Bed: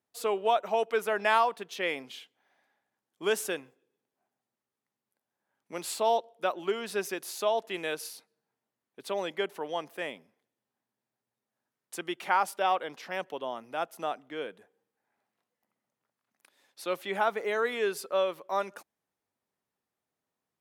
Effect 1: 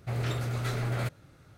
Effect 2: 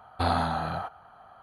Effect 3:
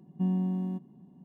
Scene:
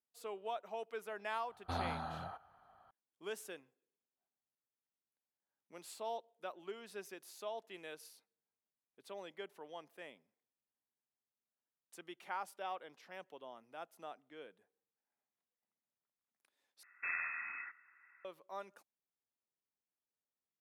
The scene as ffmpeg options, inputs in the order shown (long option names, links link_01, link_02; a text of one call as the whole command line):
ffmpeg -i bed.wav -i cue0.wav -i cue1.wav -filter_complex "[2:a]asplit=2[link_01][link_02];[0:a]volume=-16dB[link_03];[link_02]lowpass=frequency=2300:width_type=q:width=0.5098,lowpass=frequency=2300:width_type=q:width=0.6013,lowpass=frequency=2300:width_type=q:width=0.9,lowpass=frequency=2300:width_type=q:width=2.563,afreqshift=-2700[link_04];[link_03]asplit=2[link_05][link_06];[link_05]atrim=end=16.834[link_07];[link_04]atrim=end=1.42,asetpts=PTS-STARTPTS,volume=-14dB[link_08];[link_06]atrim=start=18.246[link_09];[link_01]atrim=end=1.42,asetpts=PTS-STARTPTS,volume=-13.5dB,afade=type=in:duration=0.004:curve=hsin,afade=type=out:start_time=1.416:duration=0.004:curve=hsin,adelay=1490[link_10];[link_07][link_08]acrossfade=duration=0.004:curve1=hsin:curve2=hsin[link_11];[link_11][link_09]acrossfade=duration=0.004:curve1=hsin:curve2=hsin[link_12];[link_12][link_10]amix=inputs=2:normalize=0" out.wav